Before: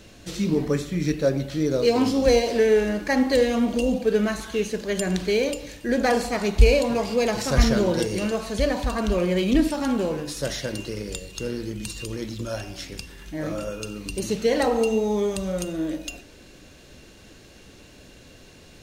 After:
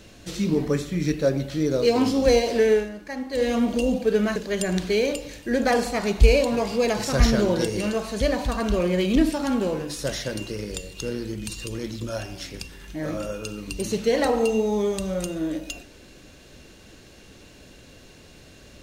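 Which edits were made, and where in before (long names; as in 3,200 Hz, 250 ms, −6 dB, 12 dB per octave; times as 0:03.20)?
0:02.72–0:03.49: duck −11 dB, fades 0.17 s
0:04.36–0:04.74: remove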